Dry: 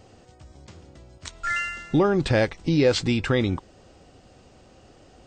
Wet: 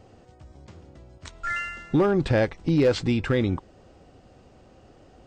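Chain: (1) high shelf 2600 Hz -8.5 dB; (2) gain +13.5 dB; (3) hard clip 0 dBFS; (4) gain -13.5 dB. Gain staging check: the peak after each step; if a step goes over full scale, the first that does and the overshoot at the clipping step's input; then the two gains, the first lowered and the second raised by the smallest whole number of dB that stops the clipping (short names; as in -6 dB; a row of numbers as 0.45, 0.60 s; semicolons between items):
-9.5, +4.0, 0.0, -13.5 dBFS; step 2, 4.0 dB; step 2 +9.5 dB, step 4 -9.5 dB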